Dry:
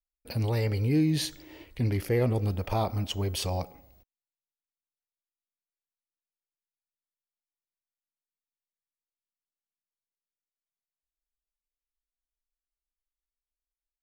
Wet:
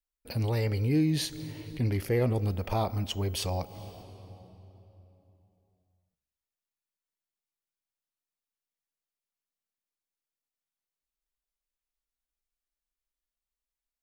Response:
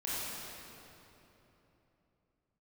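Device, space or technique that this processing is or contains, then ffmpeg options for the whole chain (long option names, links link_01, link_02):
ducked reverb: -filter_complex "[0:a]asplit=3[link_01][link_02][link_03];[1:a]atrim=start_sample=2205[link_04];[link_02][link_04]afir=irnorm=-1:irlink=0[link_05];[link_03]apad=whole_len=618331[link_06];[link_05][link_06]sidechaincompress=threshold=-50dB:ratio=4:attack=16:release=117,volume=-13.5dB[link_07];[link_01][link_07]amix=inputs=2:normalize=0,volume=-1dB"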